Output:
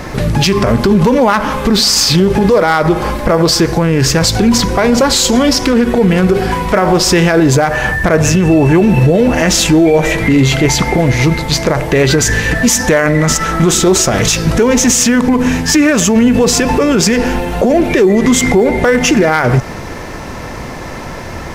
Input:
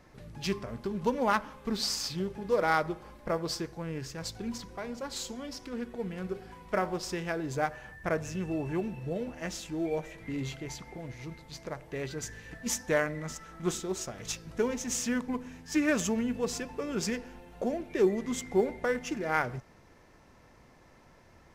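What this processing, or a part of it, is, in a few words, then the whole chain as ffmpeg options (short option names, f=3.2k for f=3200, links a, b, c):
loud club master: -af "acompressor=threshold=-33dB:ratio=2.5,asoftclip=type=hard:threshold=-24.5dB,alimiter=level_in=34.5dB:limit=-1dB:release=50:level=0:latency=1,volume=-1dB"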